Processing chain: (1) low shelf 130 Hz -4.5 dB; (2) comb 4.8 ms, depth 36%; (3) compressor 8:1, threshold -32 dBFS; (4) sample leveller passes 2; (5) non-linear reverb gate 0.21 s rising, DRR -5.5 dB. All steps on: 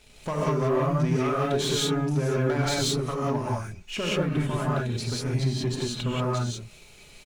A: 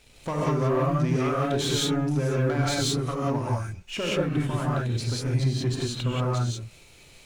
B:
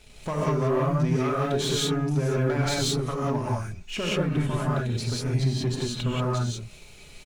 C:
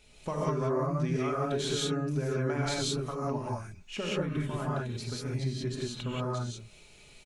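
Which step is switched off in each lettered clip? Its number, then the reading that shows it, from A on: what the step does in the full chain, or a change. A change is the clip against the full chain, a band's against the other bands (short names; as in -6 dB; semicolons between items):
2, 125 Hz band +1.5 dB; 1, 125 Hz band +1.5 dB; 4, loudness change -6.0 LU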